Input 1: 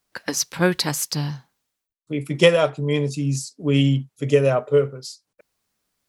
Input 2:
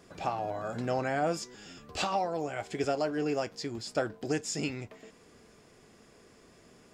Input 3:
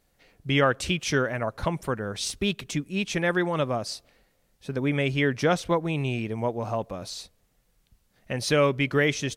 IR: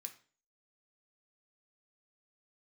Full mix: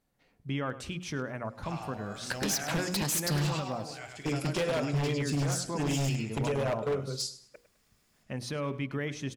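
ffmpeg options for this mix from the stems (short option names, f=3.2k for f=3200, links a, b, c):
-filter_complex "[0:a]alimiter=limit=-13dB:level=0:latency=1:release=108,acompressor=threshold=-26dB:ratio=12,adelay=2150,volume=1.5dB,asplit=2[a][b];[b]volume=-15.5dB[c];[1:a]agate=range=-10dB:threshold=-44dB:ratio=16:detection=peak,equalizer=f=420:t=o:w=2.7:g=-13,adelay=1450,volume=-1dB,asplit=2[d][e];[e]volume=-5dB[f];[2:a]equalizer=f=125:t=o:w=1:g=6,equalizer=f=250:t=o:w=1:g=7,equalizer=f=1k:t=o:w=1:g=5,volume=-11.5dB,asplit=2[g][h];[h]volume=-20dB[i];[d][g]amix=inputs=2:normalize=0,alimiter=limit=-24dB:level=0:latency=1:release=68,volume=0dB[j];[c][f][i]amix=inputs=3:normalize=0,aecho=0:1:103|206|309|412:1|0.29|0.0841|0.0244[k];[a][j][k]amix=inputs=3:normalize=0,bandreject=f=60:t=h:w=6,bandreject=f=120:t=h:w=6,bandreject=f=180:t=h:w=6,bandreject=f=240:t=h:w=6,bandreject=f=300:t=h:w=6,bandreject=f=360:t=h:w=6,bandreject=f=420:t=h:w=6,bandreject=f=480:t=h:w=6,bandreject=f=540:t=h:w=6,aeval=exprs='0.0668*(abs(mod(val(0)/0.0668+3,4)-2)-1)':c=same"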